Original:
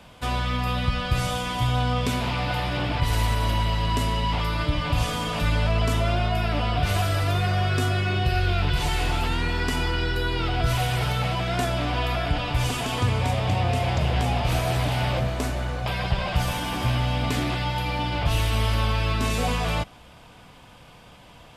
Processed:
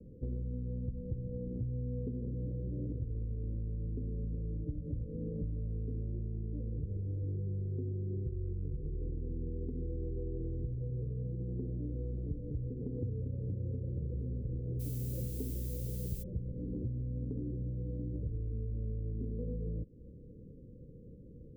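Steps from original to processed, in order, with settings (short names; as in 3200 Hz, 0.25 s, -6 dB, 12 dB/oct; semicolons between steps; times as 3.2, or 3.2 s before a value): steep low-pass 510 Hz 96 dB/oct; compressor, threshold -35 dBFS, peak gain reduction 16.5 dB; 14.79–16.22 added noise violet -49 dBFS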